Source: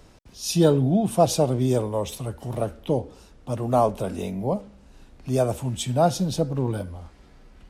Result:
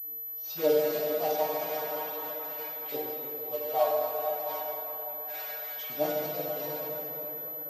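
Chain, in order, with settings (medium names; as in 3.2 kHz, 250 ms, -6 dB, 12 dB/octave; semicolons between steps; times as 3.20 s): bass shelf 350 Hz +6 dB; modulation noise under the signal 11 dB; LFO high-pass saw up 0.34 Hz 360–2100 Hz; vibrato 0.83 Hz 49 cents; granulator, spray 16 ms, pitch spread up and down by 0 st; inharmonic resonator 150 Hz, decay 0.25 s, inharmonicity 0.002; filtered feedback delay 211 ms, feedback 81%, low-pass 3.2 kHz, level -12 dB; plate-style reverb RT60 3.9 s, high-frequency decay 0.6×, DRR -2 dB; class-D stage that switches slowly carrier 12 kHz; trim -4 dB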